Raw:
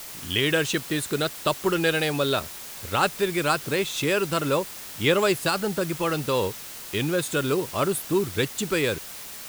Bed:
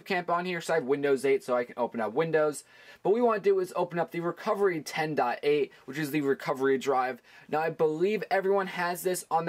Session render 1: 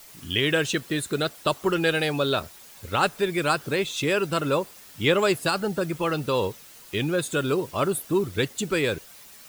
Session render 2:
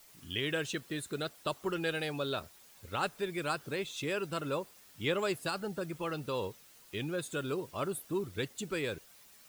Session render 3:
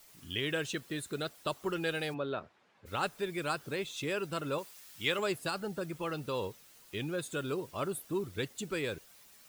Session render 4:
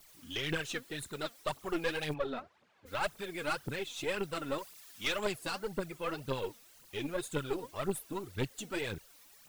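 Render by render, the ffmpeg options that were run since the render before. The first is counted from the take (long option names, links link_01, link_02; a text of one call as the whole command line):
ffmpeg -i in.wav -af "afftdn=noise_reduction=10:noise_floor=-39" out.wav
ffmpeg -i in.wav -af "volume=-11dB" out.wav
ffmpeg -i in.wav -filter_complex "[0:a]asplit=3[link_01][link_02][link_03];[link_01]afade=type=out:start_time=2.13:duration=0.02[link_04];[link_02]highpass=130,lowpass=2000,afade=type=in:start_time=2.13:duration=0.02,afade=type=out:start_time=2.85:duration=0.02[link_05];[link_03]afade=type=in:start_time=2.85:duration=0.02[link_06];[link_04][link_05][link_06]amix=inputs=3:normalize=0,asettb=1/sr,asplit=3[link_07][link_08][link_09];[link_07]atrim=end=4.584[link_10];[link_08]atrim=start=4.58:end=5.19,asetpts=PTS-STARTPTS,afade=type=in:duration=0.004:curve=qsin,afade=type=out:start_time=0.606:duration=0.004:curve=qsin,tiltshelf=frequency=970:gain=-5.5[link_11];[link_09]atrim=start=5.186[link_12];[link_10][link_11]acrossfade=duration=0.004:curve1=hsin:curve2=qsin[link_13];[link_13][link_12]acrossfade=duration=0.004:curve1=qsin:curve2=hsin" out.wav
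ffmpeg -i in.wav -af "aphaser=in_gain=1:out_gain=1:delay=4.4:decay=0.67:speed=1.9:type=triangular,aeval=exprs='(tanh(15.8*val(0)+0.65)-tanh(0.65))/15.8':channel_layout=same" out.wav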